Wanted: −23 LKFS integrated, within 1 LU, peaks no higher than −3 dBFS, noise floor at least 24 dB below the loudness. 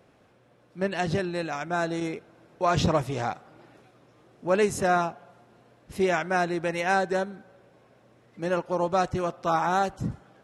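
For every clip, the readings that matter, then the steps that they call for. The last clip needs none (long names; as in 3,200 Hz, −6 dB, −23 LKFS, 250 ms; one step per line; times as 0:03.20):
integrated loudness −27.0 LKFS; sample peak −11.5 dBFS; target loudness −23.0 LKFS
→ level +4 dB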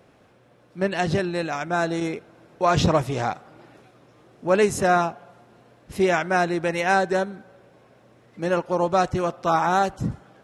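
integrated loudness −23.0 LKFS; sample peak −7.5 dBFS; background noise floor −56 dBFS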